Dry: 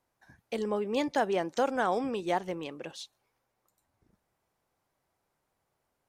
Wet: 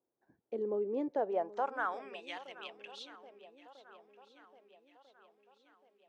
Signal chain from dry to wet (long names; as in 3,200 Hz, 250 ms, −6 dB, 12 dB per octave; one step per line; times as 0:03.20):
band-pass filter sweep 370 Hz → 3,000 Hz, 0:01.03–0:02.36
feedback echo with a long and a short gap by turns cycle 1,295 ms, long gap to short 1.5 to 1, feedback 46%, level −17.5 dB